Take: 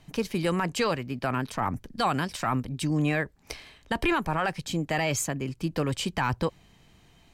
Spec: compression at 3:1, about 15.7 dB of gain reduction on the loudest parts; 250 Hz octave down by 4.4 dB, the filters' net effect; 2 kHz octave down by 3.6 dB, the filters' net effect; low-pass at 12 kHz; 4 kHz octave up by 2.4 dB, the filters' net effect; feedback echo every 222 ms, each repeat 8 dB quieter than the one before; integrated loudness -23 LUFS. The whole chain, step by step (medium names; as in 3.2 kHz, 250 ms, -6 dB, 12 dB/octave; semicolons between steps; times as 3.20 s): low-pass 12 kHz; peaking EQ 250 Hz -6.5 dB; peaking EQ 2 kHz -6 dB; peaking EQ 4 kHz +5.5 dB; compression 3:1, threshold -46 dBFS; feedback delay 222 ms, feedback 40%, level -8 dB; trim +21.5 dB